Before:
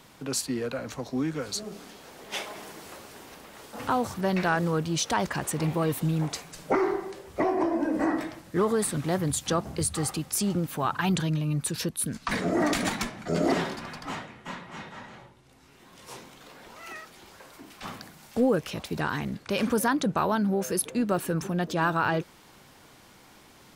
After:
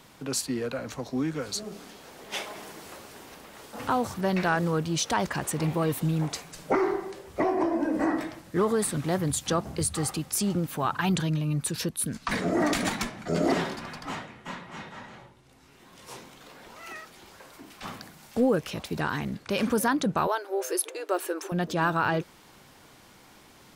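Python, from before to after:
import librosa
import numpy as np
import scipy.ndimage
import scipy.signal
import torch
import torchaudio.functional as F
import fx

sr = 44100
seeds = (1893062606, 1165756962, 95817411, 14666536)

y = fx.brickwall_highpass(x, sr, low_hz=300.0, at=(20.27, 21.52))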